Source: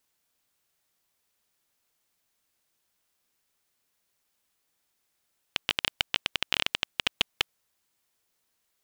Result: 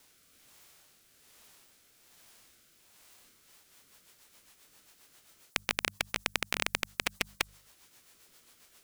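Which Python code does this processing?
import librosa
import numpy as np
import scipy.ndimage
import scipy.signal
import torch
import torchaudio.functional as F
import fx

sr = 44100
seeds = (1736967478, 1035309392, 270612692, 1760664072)

y = fx.hum_notches(x, sr, base_hz=50, count=4)
y = fx.rotary_switch(y, sr, hz=1.2, then_hz=7.5, switch_at_s=3.15)
y = fx.formant_shift(y, sr, semitones=-4)
y = fx.spectral_comp(y, sr, ratio=2.0)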